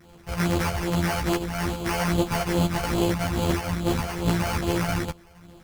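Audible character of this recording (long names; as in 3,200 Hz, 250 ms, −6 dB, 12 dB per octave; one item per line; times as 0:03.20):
a buzz of ramps at a fixed pitch in blocks of 256 samples
phaser sweep stages 12, 2.4 Hz, lowest notch 320–2,400 Hz
aliases and images of a low sample rate 3,700 Hz, jitter 0%
a shimmering, thickened sound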